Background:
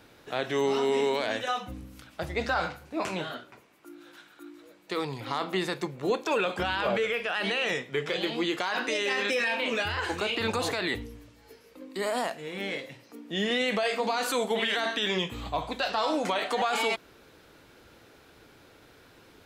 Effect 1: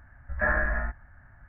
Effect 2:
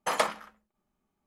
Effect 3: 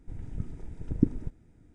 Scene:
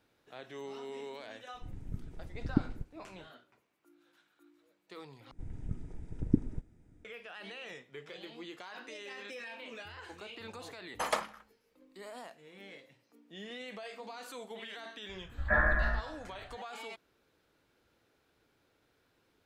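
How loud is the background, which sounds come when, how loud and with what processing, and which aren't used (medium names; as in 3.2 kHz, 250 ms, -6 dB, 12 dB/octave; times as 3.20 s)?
background -17.5 dB
1.54 s: add 3 -5.5 dB
5.31 s: replace with 3 -3.5 dB
10.93 s: add 2 -5.5 dB
15.09 s: add 1 -2 dB + feedback echo behind a band-pass 90 ms, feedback 62%, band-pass 790 Hz, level -13 dB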